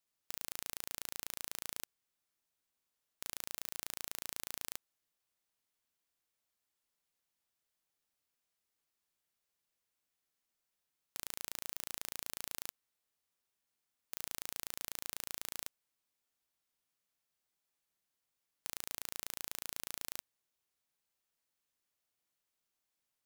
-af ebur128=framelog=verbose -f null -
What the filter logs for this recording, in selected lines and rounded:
Integrated loudness:
  I:         -42.7 LUFS
  Threshold: -52.7 LUFS
Loudness range:
  LRA:         6.6 LU
  Threshold: -65.8 LUFS
  LRA low:   -51.1 LUFS
  LRA high:  -44.5 LUFS